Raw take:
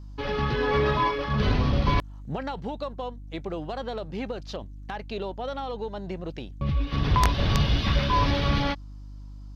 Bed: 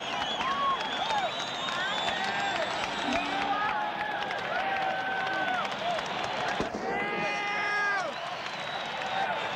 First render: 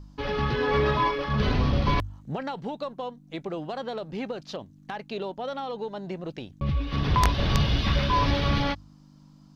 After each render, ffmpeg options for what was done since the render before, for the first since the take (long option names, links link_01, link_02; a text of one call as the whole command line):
ffmpeg -i in.wav -af "bandreject=frequency=50:width_type=h:width=4,bandreject=frequency=100:width_type=h:width=4" out.wav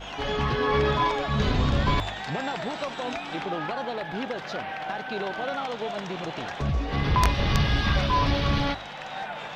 ffmpeg -i in.wav -i bed.wav -filter_complex "[1:a]volume=-4.5dB[link_01];[0:a][link_01]amix=inputs=2:normalize=0" out.wav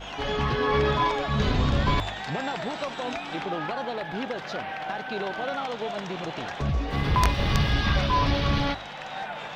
ffmpeg -i in.wav -filter_complex "[0:a]asettb=1/sr,asplit=3[link_01][link_02][link_03];[link_01]atrim=end=6.904[link_04];[link_02]atrim=start=6.9:end=7.74,asetpts=PTS-STARTPTS,afade=type=in:duration=0.004:curve=qsin,afade=type=out:start_time=0.836:duration=0.004:curve=qsin,aeval=exprs='sgn(val(0))*max(abs(val(0))-0.00398,0)':channel_layout=same[link_05];[link_03]atrim=start=7.736[link_06];[link_04][link_05]acrossfade=duration=0.004:curve1=hsin:curve2=qsin[link_07];[link_07][link_06]acrossfade=duration=0.004:curve1=qsin:curve2=hsin" out.wav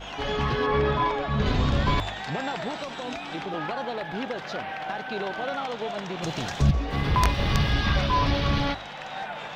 ffmpeg -i in.wav -filter_complex "[0:a]asettb=1/sr,asplit=3[link_01][link_02][link_03];[link_01]atrim=end=0.664[link_04];[link_02]atrim=start=0.66:end=1.46,asetpts=PTS-STARTPTS,afade=type=in:duration=0.004:curve=qsin,afade=type=out:start_time=0.796:duration=0.004:curve=qsin,lowpass=frequency=2600:poles=1[link_05];[link_03]atrim=start=1.456[link_06];[link_04][link_05]acrossfade=duration=0.004:curve1=hsin:curve2=qsin[link_07];[link_07][link_06]acrossfade=duration=0.004:curve1=qsin:curve2=hsin,asettb=1/sr,asplit=3[link_08][link_09][link_10];[link_08]atrim=end=2.784[link_11];[link_09]atrim=start=2.78:end=3.54,asetpts=PTS-STARTPTS,afade=type=in:duration=0.004:curve=qsin,afade=type=out:start_time=0.756:duration=0.004:curve=qsin,acrossover=split=370|3000[link_12][link_13][link_14];[link_13]acompressor=threshold=-32dB:ratio=6:attack=3.2:release=140:knee=2.83:detection=peak[link_15];[link_12][link_15][link_14]amix=inputs=3:normalize=0[link_16];[link_10]atrim=start=3.536[link_17];[link_11][link_16]acrossfade=duration=0.004:curve1=hsin:curve2=qsin[link_18];[link_18][link_17]acrossfade=duration=0.004:curve1=qsin:curve2=hsin,asettb=1/sr,asplit=3[link_19][link_20][link_21];[link_19]atrim=end=6.224[link_22];[link_20]atrim=start=6.22:end=6.71,asetpts=PTS-STARTPTS,afade=type=in:duration=0.004:curve=qsin,afade=type=out:start_time=0.486:duration=0.004:curve=qsin,bass=frequency=250:gain=9,treble=frequency=4000:gain=13[link_23];[link_21]atrim=start=6.706[link_24];[link_22][link_23]acrossfade=duration=0.004:curve1=hsin:curve2=qsin[link_25];[link_25][link_24]acrossfade=duration=0.004:curve1=qsin:curve2=hsin" out.wav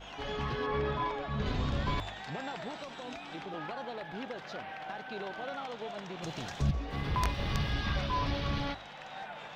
ffmpeg -i in.wav -af "volume=-9dB" out.wav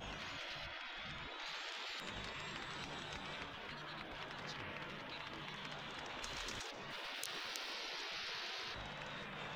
ffmpeg -i in.wav -af "afftfilt=real='re*lt(hypot(re,im),0.02)':imag='im*lt(hypot(re,im),0.02)':win_size=1024:overlap=0.75,lowshelf=frequency=150:gain=8" out.wav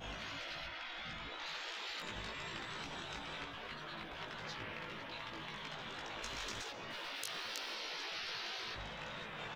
ffmpeg -i in.wav -filter_complex "[0:a]asplit=2[link_01][link_02];[link_02]adelay=18,volume=-3dB[link_03];[link_01][link_03]amix=inputs=2:normalize=0,asplit=2[link_04][link_05];[link_05]adelay=156,lowpass=frequency=2000:poles=1,volume=-18dB,asplit=2[link_06][link_07];[link_07]adelay=156,lowpass=frequency=2000:poles=1,volume=0.47,asplit=2[link_08][link_09];[link_09]adelay=156,lowpass=frequency=2000:poles=1,volume=0.47,asplit=2[link_10][link_11];[link_11]adelay=156,lowpass=frequency=2000:poles=1,volume=0.47[link_12];[link_04][link_06][link_08][link_10][link_12]amix=inputs=5:normalize=0" out.wav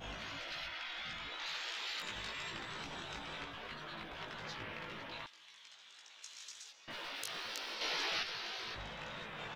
ffmpeg -i in.wav -filter_complex "[0:a]asettb=1/sr,asplit=3[link_01][link_02][link_03];[link_01]atrim=end=0.524[link_04];[link_02]atrim=start=0.52:end=2.51,asetpts=PTS-STARTPTS,afade=type=in:duration=0.004:curve=qsin,afade=type=out:start_time=1.986:duration=0.004:curve=qsin,tiltshelf=frequency=1100:gain=-4[link_05];[link_03]atrim=start=2.506[link_06];[link_04][link_05]acrossfade=duration=0.004:curve1=hsin:curve2=qsin[link_07];[link_07][link_06]acrossfade=duration=0.004:curve1=qsin:curve2=hsin,asettb=1/sr,asplit=3[link_08][link_09][link_10];[link_08]atrim=end=5.264[link_11];[link_09]atrim=start=5.26:end=6.88,asetpts=PTS-STARTPTS,afade=type=in:duration=0.004:curve=qsin,afade=type=out:start_time=1.616:duration=0.004:curve=qsin,bandpass=frequency=7400:width_type=q:width=1.2[link_12];[link_10]atrim=start=6.876[link_13];[link_11][link_12]acrossfade=duration=0.004:curve1=hsin:curve2=qsin[link_14];[link_14][link_13]acrossfade=duration=0.004:curve1=qsin:curve2=hsin,asplit=3[link_15][link_16][link_17];[link_15]atrim=end=7.812[link_18];[link_16]atrim=start=7.808:end=8.232,asetpts=PTS-STARTPTS,volume=6.5dB[link_19];[link_17]atrim=start=8.228[link_20];[link_18][link_19]acrossfade=duration=0.004:curve1=hsin:curve2=hsin[link_21];[link_21][link_20]acrossfade=duration=0.004:curve1=hsin:curve2=hsin" out.wav